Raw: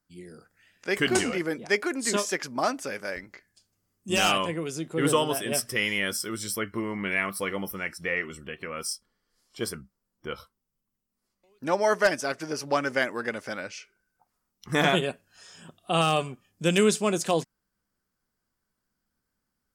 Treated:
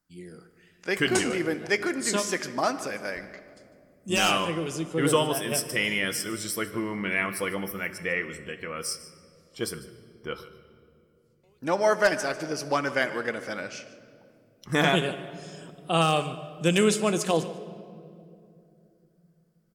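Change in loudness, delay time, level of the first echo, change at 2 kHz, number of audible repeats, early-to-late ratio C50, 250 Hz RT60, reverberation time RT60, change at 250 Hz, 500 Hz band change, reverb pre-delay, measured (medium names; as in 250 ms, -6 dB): 0.0 dB, 149 ms, -17.0 dB, +0.5 dB, 1, 12.0 dB, 4.0 s, 2.6 s, +1.0 dB, +0.5 dB, 6 ms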